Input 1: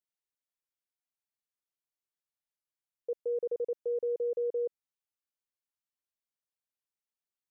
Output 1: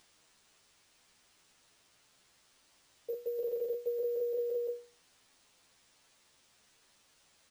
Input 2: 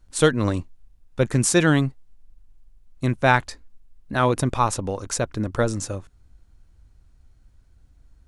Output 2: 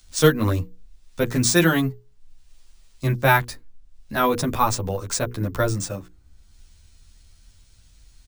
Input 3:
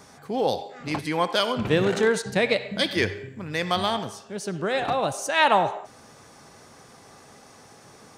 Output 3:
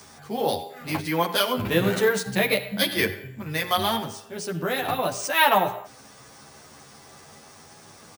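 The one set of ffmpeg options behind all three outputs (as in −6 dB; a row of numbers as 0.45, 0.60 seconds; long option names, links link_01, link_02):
-filter_complex "[0:a]equalizer=frequency=530:width=0.57:gain=-2.5,bandreject=frequency=60:width_type=h:width=6,bandreject=frequency=120:width_type=h:width=6,bandreject=frequency=180:width_type=h:width=6,bandreject=frequency=240:width_type=h:width=6,bandreject=frequency=300:width_type=h:width=6,bandreject=frequency=360:width_type=h:width=6,bandreject=frequency=420:width_type=h:width=6,bandreject=frequency=480:width_type=h:width=6,acrossover=split=150|1300|2500[link_01][link_02][link_03][link_04];[link_04]acompressor=mode=upward:threshold=-49dB:ratio=2.5[link_05];[link_01][link_02][link_03][link_05]amix=inputs=4:normalize=0,acrusher=samples=3:mix=1:aa=0.000001,asplit=2[link_06][link_07];[link_07]adelay=10.6,afreqshift=0.28[link_08];[link_06][link_08]amix=inputs=2:normalize=1,volume=5dB"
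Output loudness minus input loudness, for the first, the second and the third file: −2.0, +0.5, +0.5 LU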